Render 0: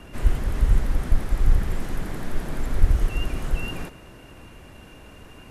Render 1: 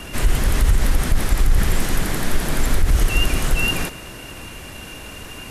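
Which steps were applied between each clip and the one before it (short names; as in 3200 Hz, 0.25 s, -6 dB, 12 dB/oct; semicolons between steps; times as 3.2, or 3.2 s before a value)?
limiter -15 dBFS, peak gain reduction 10 dB; high shelf 2100 Hz +11 dB; gain +7.5 dB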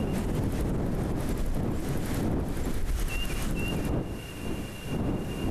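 wind noise 270 Hz -11 dBFS; compressor 5:1, threshold -17 dBFS, peak gain reduction 17 dB; limiter -13.5 dBFS, peak gain reduction 7 dB; gain -7 dB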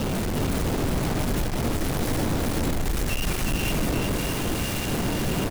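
companded quantiser 2-bit; echo 0.364 s -3.5 dB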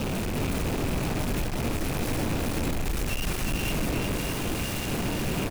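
rattling part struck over -27 dBFS, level -25 dBFS; gain -3 dB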